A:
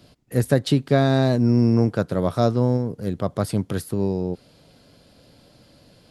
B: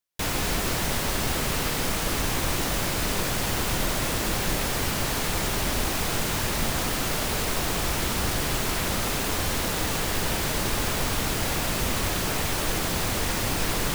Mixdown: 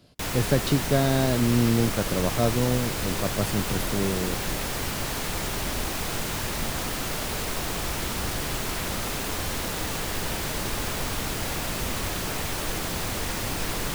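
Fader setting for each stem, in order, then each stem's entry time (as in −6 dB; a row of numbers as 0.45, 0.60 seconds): −4.5, −3.0 decibels; 0.00, 0.00 seconds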